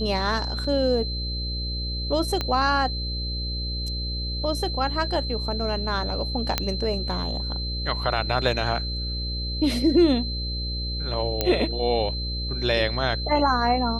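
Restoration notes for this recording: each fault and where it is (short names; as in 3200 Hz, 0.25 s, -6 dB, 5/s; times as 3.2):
buzz 60 Hz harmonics 10 -30 dBFS
tone 4100 Hz -31 dBFS
0.64 gap 3.9 ms
2.41 pop -12 dBFS
6.58 pop -6 dBFS
11.41 pop -7 dBFS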